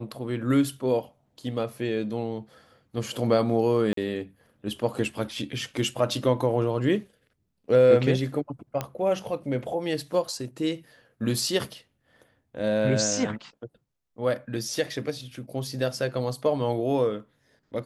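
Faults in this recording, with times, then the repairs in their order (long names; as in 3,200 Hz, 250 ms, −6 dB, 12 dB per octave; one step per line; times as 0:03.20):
0:03.93–0:03.97: drop-out 43 ms
0:08.81: click −14 dBFS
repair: click removal
repair the gap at 0:03.93, 43 ms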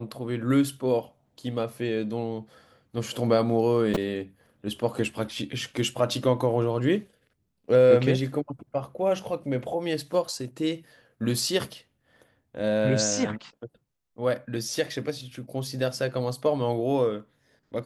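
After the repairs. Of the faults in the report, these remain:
0:08.81: click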